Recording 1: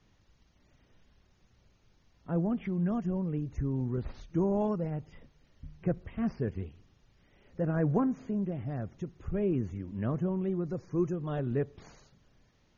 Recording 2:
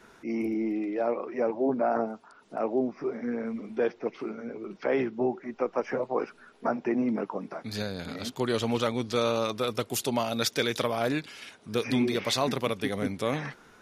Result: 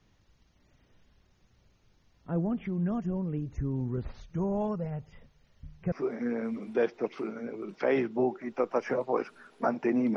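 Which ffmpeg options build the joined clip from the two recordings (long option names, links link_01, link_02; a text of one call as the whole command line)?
ffmpeg -i cue0.wav -i cue1.wav -filter_complex "[0:a]asettb=1/sr,asplit=3[link_01][link_02][link_03];[link_01]atrim=end=4.094[link_04];[link_02]atrim=start=4.09:end=5.92,asetpts=PTS-STARTPTS,afade=type=in:duration=0.004:curve=qsin,afade=type=out:start_time=1.826:duration=0.004:curve=qsin,equalizer=frequency=310:width=4.6:gain=-14.5[link_05];[link_03]atrim=start=5.916[link_06];[link_04][link_05]acrossfade=duration=0.004:curve1=hsin:curve2=qsin[link_07];[link_07][link_06]acrossfade=duration=0.004:curve1=qsin:curve2=hsin,apad=whole_dur=10.16,atrim=end=10.16,atrim=end=5.922[link_08];[1:a]atrim=start=2.938:end=7.18[link_09];[link_08][link_09]acrossfade=duration=0.004:curve1=hsin:curve2=hsin" out.wav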